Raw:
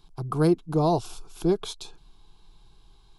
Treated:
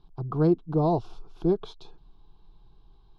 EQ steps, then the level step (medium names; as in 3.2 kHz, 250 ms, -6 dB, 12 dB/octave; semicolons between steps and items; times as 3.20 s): distance through air 280 m; peaking EQ 2.1 kHz -9.5 dB 1.1 oct; 0.0 dB